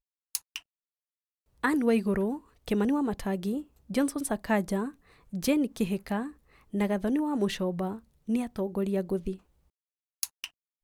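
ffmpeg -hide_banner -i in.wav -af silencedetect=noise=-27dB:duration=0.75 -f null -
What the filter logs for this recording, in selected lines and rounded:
silence_start: 0.56
silence_end: 1.64 | silence_duration: 1.08
silence_start: 9.32
silence_end: 10.23 | silence_duration: 0.92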